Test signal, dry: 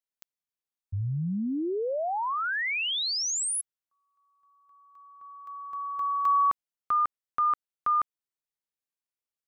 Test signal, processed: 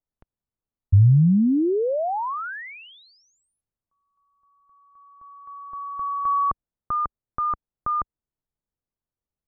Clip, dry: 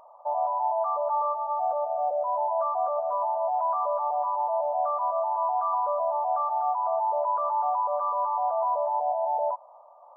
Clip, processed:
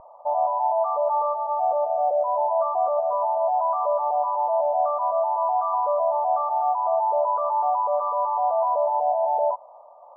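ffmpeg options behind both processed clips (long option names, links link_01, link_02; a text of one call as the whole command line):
ffmpeg -i in.wav -af "lowpass=1200,aemphasis=mode=reproduction:type=riaa,volume=4dB" out.wav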